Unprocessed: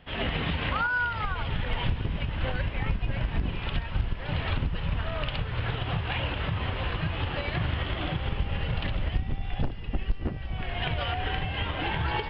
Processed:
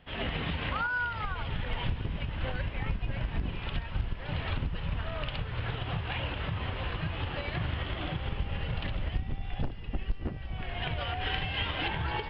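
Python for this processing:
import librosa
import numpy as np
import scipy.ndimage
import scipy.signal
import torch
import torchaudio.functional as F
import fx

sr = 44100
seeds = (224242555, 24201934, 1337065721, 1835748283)

y = fx.high_shelf(x, sr, hz=2400.0, db=10.0, at=(11.21, 11.88))
y = y * librosa.db_to_amplitude(-4.0)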